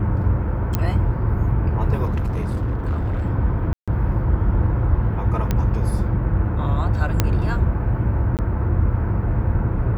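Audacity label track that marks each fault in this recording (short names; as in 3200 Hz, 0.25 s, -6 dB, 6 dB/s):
0.750000	0.750000	pop -7 dBFS
2.040000	3.230000	clipped -18.5 dBFS
3.730000	3.880000	gap 0.146 s
5.510000	5.510000	pop -8 dBFS
7.200000	7.200000	pop -3 dBFS
8.370000	8.390000	gap 18 ms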